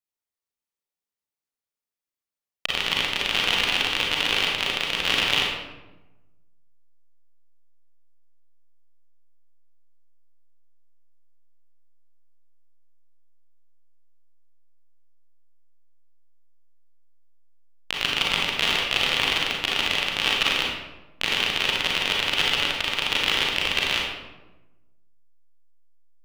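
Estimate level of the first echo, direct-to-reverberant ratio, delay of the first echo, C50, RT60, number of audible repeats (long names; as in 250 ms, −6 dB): no echo audible, −2.5 dB, no echo audible, 0.5 dB, 1.1 s, no echo audible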